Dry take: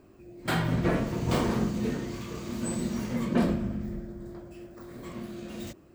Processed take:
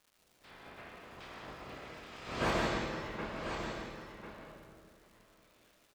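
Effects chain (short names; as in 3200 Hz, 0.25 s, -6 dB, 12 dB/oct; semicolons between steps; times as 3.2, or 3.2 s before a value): spectral limiter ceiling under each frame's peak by 23 dB; Doppler pass-by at 2.48, 28 m/s, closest 2 m; LPF 3500 Hz 12 dB/oct; crackle 260/s -56 dBFS; on a send: echo 1.046 s -8.5 dB; on the sum: digital reverb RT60 1.4 s, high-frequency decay 0.9×, pre-delay 70 ms, DRR 1 dB; slew limiter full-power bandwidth 46 Hz; gain +2 dB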